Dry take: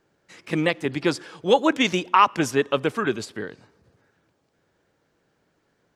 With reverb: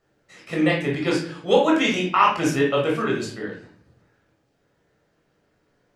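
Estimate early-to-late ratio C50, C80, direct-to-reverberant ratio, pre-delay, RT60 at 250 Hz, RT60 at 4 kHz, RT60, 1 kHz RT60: 4.5 dB, 9.5 dB, -3.0 dB, 15 ms, 0.75 s, 0.40 s, 0.45 s, 0.45 s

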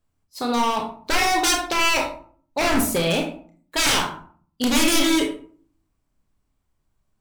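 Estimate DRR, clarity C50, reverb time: 2.0 dB, 7.5 dB, 0.50 s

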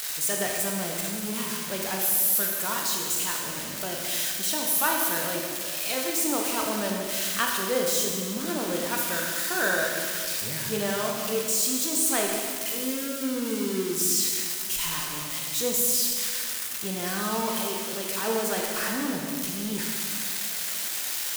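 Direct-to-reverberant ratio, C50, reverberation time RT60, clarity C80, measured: -0.5 dB, 1.5 dB, 1.9 s, 3.0 dB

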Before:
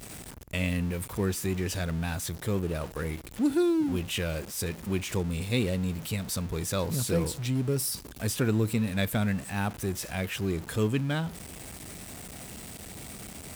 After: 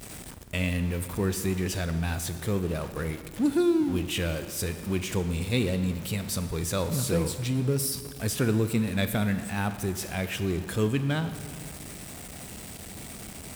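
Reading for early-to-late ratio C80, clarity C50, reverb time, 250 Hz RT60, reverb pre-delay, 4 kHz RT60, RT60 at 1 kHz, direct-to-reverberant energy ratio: 12.0 dB, 11.0 dB, 2.0 s, 2.1 s, 20 ms, 1.6 s, 1.9 s, 10.0 dB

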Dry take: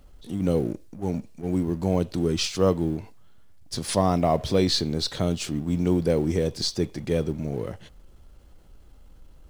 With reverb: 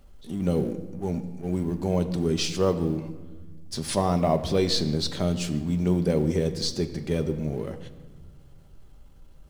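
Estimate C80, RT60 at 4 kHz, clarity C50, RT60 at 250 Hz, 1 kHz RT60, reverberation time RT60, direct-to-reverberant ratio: 13.5 dB, 1.0 s, 12.5 dB, 2.3 s, 1.3 s, 1.4 s, 7.5 dB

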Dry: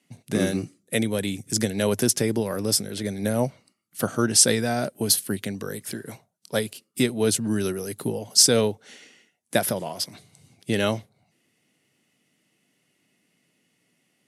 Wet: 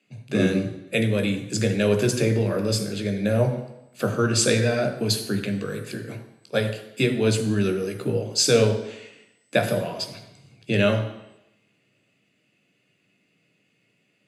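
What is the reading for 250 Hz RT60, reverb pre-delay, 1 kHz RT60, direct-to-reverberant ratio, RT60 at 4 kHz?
0.85 s, 12 ms, 0.85 s, 5.0 dB, 0.90 s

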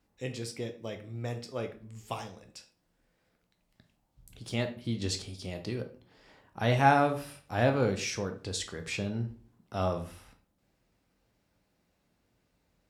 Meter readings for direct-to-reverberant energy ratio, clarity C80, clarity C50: 5.0 dB, 17.0 dB, 11.5 dB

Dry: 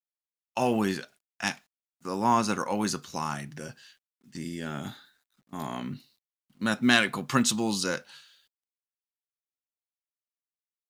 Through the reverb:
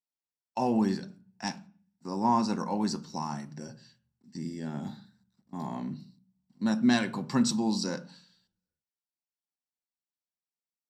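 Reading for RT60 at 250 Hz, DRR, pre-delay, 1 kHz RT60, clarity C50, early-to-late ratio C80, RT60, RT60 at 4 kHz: 0.70 s, 10.5 dB, 3 ms, 0.45 s, 17.5 dB, 21.5 dB, 0.40 s, 0.40 s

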